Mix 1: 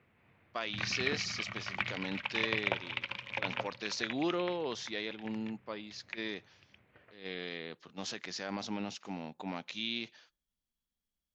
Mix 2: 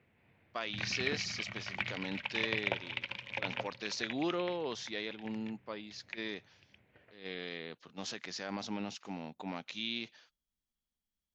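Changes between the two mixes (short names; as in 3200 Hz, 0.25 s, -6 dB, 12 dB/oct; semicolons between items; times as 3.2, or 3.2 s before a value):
background: add bell 1200 Hz -7 dB 0.49 oct; reverb: off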